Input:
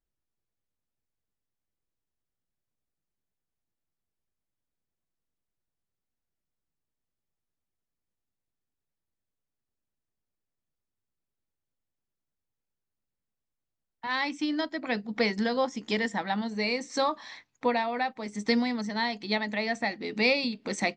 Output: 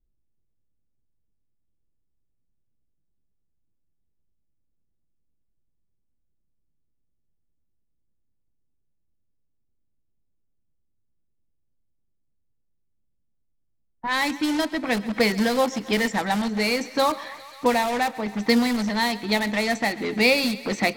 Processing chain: bass shelf 68 Hz +8 dB; in parallel at -7.5 dB: integer overflow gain 28.5 dB; on the sum: level-controlled noise filter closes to 300 Hz, open at -24.5 dBFS; thinning echo 134 ms, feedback 69%, high-pass 350 Hz, level -18 dB; tape noise reduction on one side only encoder only; trim +5.5 dB

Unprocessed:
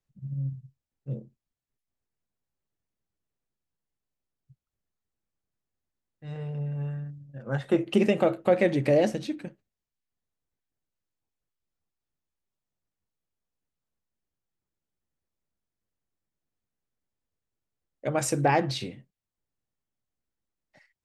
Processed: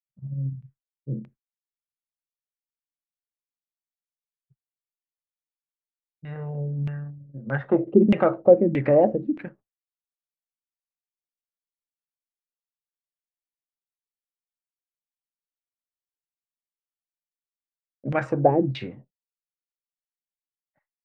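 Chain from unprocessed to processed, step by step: expander -47 dBFS; LFO low-pass saw down 1.6 Hz 200–2400 Hz; trim +1.5 dB

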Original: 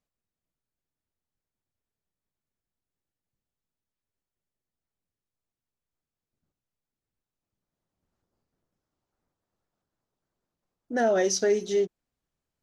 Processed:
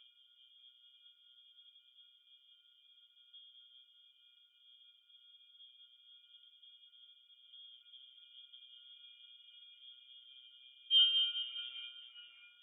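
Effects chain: 11.02–11.43 s: block-companded coder 3-bit; bass shelf 160 Hz +12 dB; in parallel at 0 dB: upward compressor, threshold -26 dBFS; on the sum: peak limiter -19.5 dBFS, peak gain reduction 13 dB; hard clipper -23 dBFS, distortion -18 dB; pitch-class resonator B, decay 0.45 s; on a send: two-band feedback delay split 630 Hz, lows 201 ms, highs 592 ms, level -6 dB; on the sum: frequency inversion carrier 3.4 kHz; trim +6 dB

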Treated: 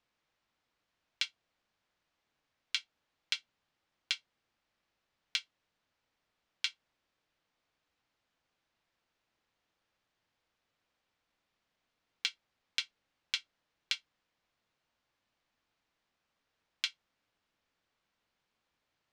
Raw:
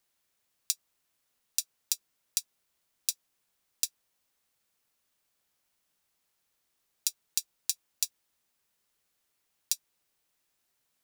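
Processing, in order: distance through air 66 m; band-stop 680 Hz, Q 12; speed mistake 78 rpm record played at 45 rpm

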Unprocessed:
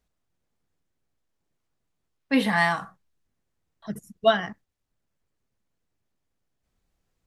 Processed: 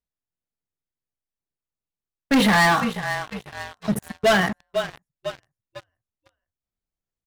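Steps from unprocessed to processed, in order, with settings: frequency-shifting echo 496 ms, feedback 48%, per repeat -32 Hz, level -16.5 dB; waveshaping leveller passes 5; trim -6 dB

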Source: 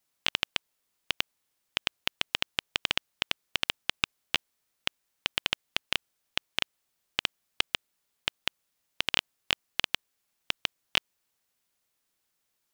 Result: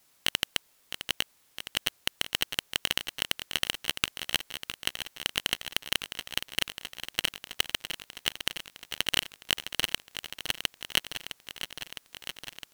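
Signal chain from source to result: in parallel at -10.5 dB: sine folder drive 20 dB, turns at -4.5 dBFS; on the sum: bit-crushed delay 660 ms, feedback 80%, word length 7-bit, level -10 dB; trim -1.5 dB

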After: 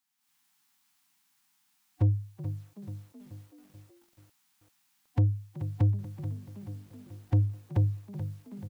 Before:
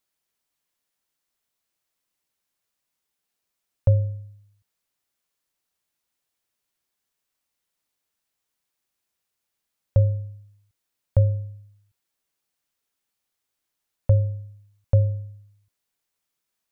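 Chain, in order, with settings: FFT band-reject 300–740 Hz; high-pass 130 Hz 24 dB/octave; level rider gain up to 12 dB; saturation -19 dBFS, distortion -8 dB; time stretch by phase-locked vocoder 0.52×; on a send: frequency-shifting echo 376 ms, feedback 55%, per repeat +49 Hz, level -17.5 dB; on the sum: bit-crushed delay 432 ms, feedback 55%, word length 9-bit, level -11 dB

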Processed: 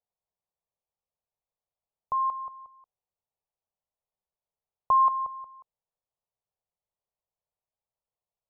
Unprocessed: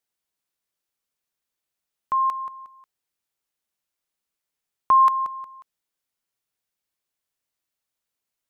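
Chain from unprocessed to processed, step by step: low-pass 1.1 kHz 12 dB/octave; static phaser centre 690 Hz, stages 4; trim +1 dB

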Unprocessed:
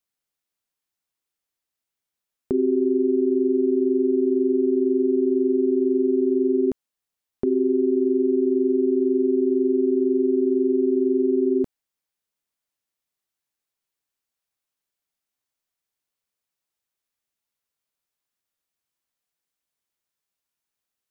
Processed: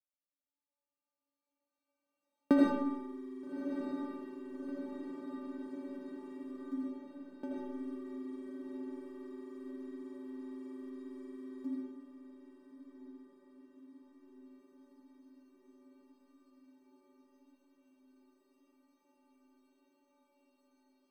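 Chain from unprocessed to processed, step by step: local Wiener filter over 25 samples; recorder AGC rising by 10 dB/s; high-pass 170 Hz 24 dB/octave; dynamic bell 480 Hz, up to -5 dB, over -36 dBFS, Q 1.3; inharmonic resonator 280 Hz, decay 0.54 s, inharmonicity 0.008; echo that smears into a reverb 1254 ms, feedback 68%, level -10 dB; algorithmic reverb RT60 0.93 s, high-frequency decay 0.95×, pre-delay 40 ms, DRR -3 dB; trim +5.5 dB

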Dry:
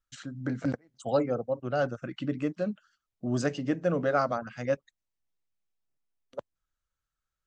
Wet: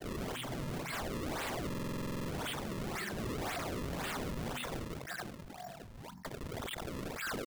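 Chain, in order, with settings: jump at every zero crossing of -31 dBFS; peaking EQ 140 Hz +12 dB 1.4 oct; ever faster or slower copies 120 ms, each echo +4 st, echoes 3, each echo -6 dB; wah-wah 0.48 Hz 690–3600 Hz, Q 18; on a send at -13.5 dB: resonant low shelf 370 Hz +13.5 dB, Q 3 + reverberation RT60 0.70 s, pre-delay 4 ms; on the sum: compression 4:1, threshold -44 dBFS, peak gain reduction 12 dB; granulator 100 ms; sine folder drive 20 dB, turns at -33.5 dBFS; decimation with a swept rate 33×, swing 160% 1.9 Hz; buffer glitch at 1.68 s, samples 2048, times 12; decay stretcher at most 56 dB/s; trim -1.5 dB

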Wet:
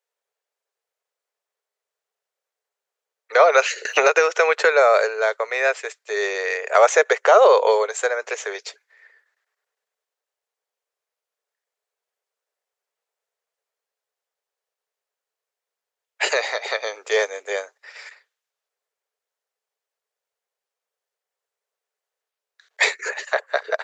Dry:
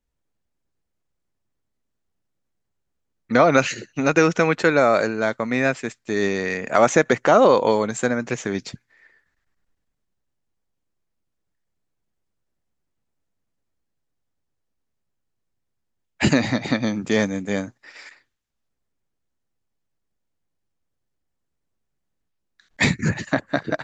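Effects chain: Chebyshev high-pass 420 Hz, order 6; 3.85–4.65 s: three bands compressed up and down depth 100%; trim +2.5 dB

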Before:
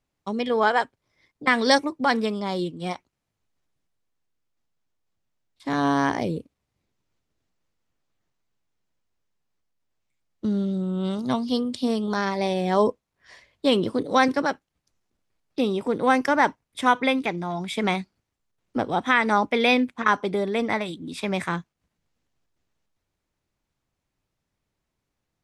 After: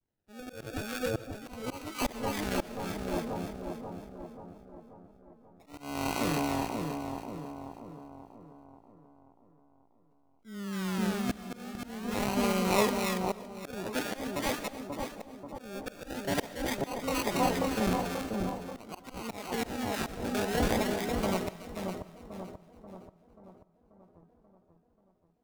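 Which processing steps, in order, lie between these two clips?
decimation with a swept rate 35×, swing 60% 0.46 Hz; vibrato 0.59 Hz 37 cents; two-band feedback delay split 1.1 kHz, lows 535 ms, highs 281 ms, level -3 dB; slow attack 451 ms; reverberation RT60 0.55 s, pre-delay 90 ms, DRR 16.5 dB; trim -6 dB

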